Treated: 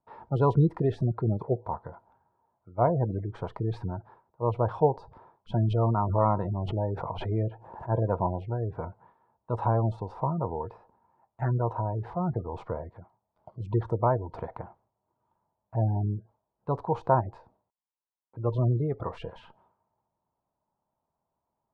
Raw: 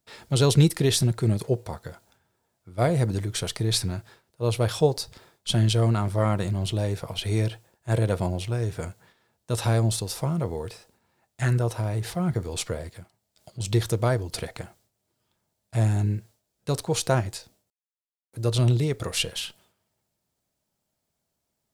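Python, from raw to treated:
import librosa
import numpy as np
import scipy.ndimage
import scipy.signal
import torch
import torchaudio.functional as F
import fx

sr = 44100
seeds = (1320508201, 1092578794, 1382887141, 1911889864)

y = fx.spec_gate(x, sr, threshold_db=-30, keep='strong')
y = fx.lowpass_res(y, sr, hz=960.0, q=4.9)
y = fx.pre_swell(y, sr, db_per_s=58.0, at=(5.56, 7.89))
y = y * 10.0 ** (-4.5 / 20.0)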